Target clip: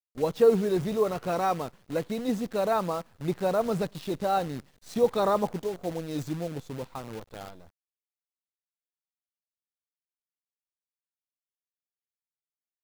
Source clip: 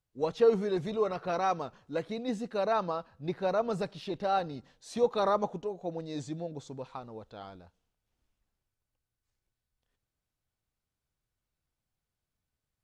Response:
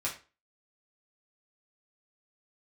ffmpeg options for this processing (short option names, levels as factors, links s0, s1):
-filter_complex "[0:a]asettb=1/sr,asplit=3[s0][s1][s2];[s0]atrim=end=5.534[s3];[s1]atrim=start=5.53:end=6.13,asetpts=PTS-STARTPTS,afade=t=in:d=0.004:c=qsin,afade=t=out:st=0.596:d=0.004:c=qsin,asubboost=boost=10.5:cutoff=65[s4];[s2]atrim=start=6.126[s5];[s3][s4]acrossfade=d=0.004:c1=hsin:c2=qsin[s6];[s6][s5]acrossfade=d=0.004:c1=qsin:c2=hsin,acrusher=bits=8:dc=4:mix=0:aa=0.000001,lowshelf=f=420:g=6,volume=1.12"